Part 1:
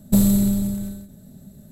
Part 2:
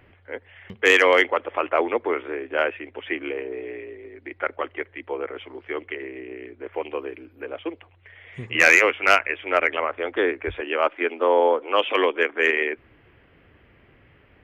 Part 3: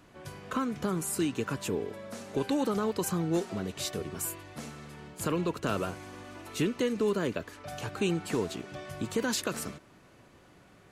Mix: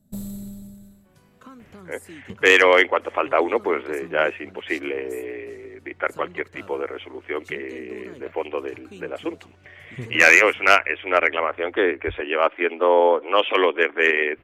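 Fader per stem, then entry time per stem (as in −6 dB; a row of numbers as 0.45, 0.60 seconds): −17.0, +2.0, −13.5 decibels; 0.00, 1.60, 0.90 seconds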